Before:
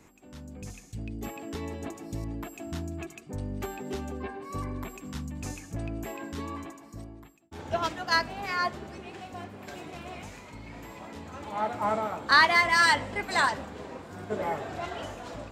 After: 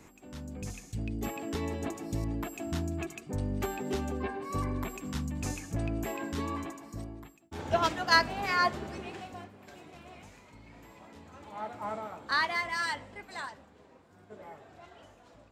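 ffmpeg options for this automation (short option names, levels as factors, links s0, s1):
-af "volume=1.26,afade=t=out:st=9.03:d=0.5:silence=0.281838,afade=t=out:st=12.42:d=1.17:silence=0.398107"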